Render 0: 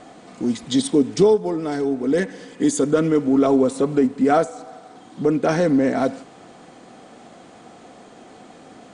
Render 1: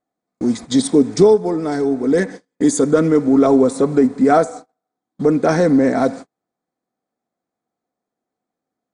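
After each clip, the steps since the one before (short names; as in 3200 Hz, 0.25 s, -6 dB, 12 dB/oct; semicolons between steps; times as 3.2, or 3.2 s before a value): bell 2900 Hz -12 dB 0.36 oct; gate -33 dBFS, range -42 dB; gain +4 dB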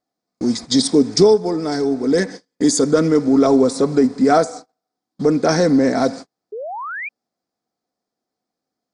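painted sound rise, 6.52–7.09, 400–2500 Hz -27 dBFS; bell 5000 Hz +13 dB 0.61 oct; gain -1 dB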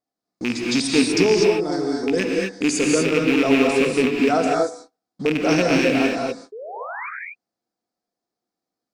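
rattling part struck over -19 dBFS, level -7 dBFS; non-linear reverb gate 0.27 s rising, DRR -1 dB; gain -6.5 dB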